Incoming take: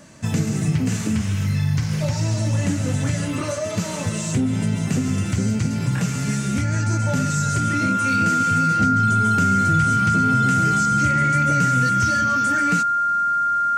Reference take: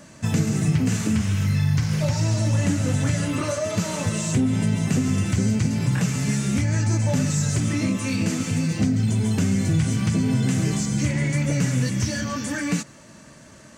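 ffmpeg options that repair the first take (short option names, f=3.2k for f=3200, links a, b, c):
-af "bandreject=f=1.4k:w=30"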